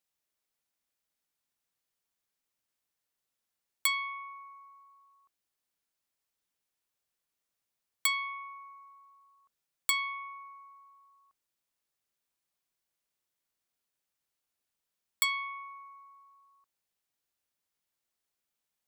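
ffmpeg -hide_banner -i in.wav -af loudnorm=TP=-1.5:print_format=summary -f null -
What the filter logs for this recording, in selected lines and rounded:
Input Integrated:    -32.8 LUFS
Input True Peak:     -12.3 dBTP
Input LRA:             9.9 LU
Input Threshold:     -46.7 LUFS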